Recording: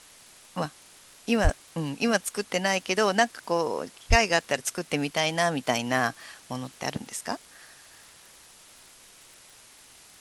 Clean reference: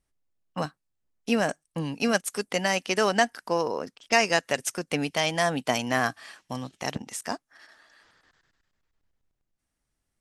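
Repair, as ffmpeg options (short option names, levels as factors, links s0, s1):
-filter_complex "[0:a]adeclick=t=4,asplit=3[s0][s1][s2];[s0]afade=t=out:st=1.43:d=0.02[s3];[s1]highpass=f=140:w=0.5412,highpass=f=140:w=1.3066,afade=t=in:st=1.43:d=0.02,afade=t=out:st=1.55:d=0.02[s4];[s2]afade=t=in:st=1.55:d=0.02[s5];[s3][s4][s5]amix=inputs=3:normalize=0,asplit=3[s6][s7][s8];[s6]afade=t=out:st=4.09:d=0.02[s9];[s7]highpass=f=140:w=0.5412,highpass=f=140:w=1.3066,afade=t=in:st=4.09:d=0.02,afade=t=out:st=4.21:d=0.02[s10];[s8]afade=t=in:st=4.21:d=0.02[s11];[s9][s10][s11]amix=inputs=3:normalize=0,afwtdn=0.0032"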